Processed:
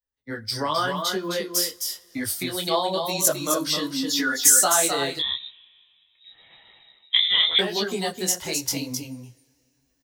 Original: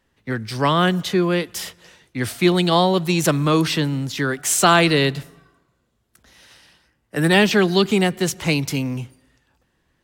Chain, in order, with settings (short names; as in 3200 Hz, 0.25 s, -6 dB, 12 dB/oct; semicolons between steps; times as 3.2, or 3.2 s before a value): per-bin expansion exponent 1.5; recorder AGC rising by 12 dB/s; 3.75–4.59 comb 4.1 ms, depth 93%; compressor, threshold -20 dBFS, peak gain reduction 9 dB; fifteen-band EQ 160 Hz -9 dB, 630 Hz +4 dB, 2500 Hz -10 dB; on a send: echo 0.261 s -6 dB; on the sum: two-slope reverb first 0.29 s, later 2.8 s, from -20 dB, DRR 16.5 dB; 5.19–7.59 inverted band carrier 3800 Hz; tilt +2.5 dB/oct; detuned doubles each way 31 cents; gain +4.5 dB